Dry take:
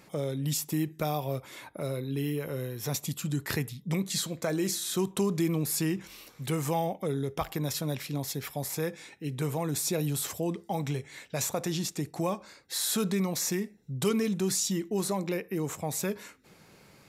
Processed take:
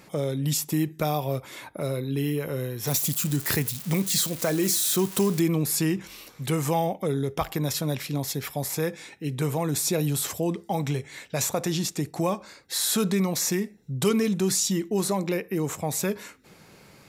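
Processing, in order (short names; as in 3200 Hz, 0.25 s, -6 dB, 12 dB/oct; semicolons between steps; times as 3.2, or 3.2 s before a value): 2.87–5.4 switching spikes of -28 dBFS; gain +4.5 dB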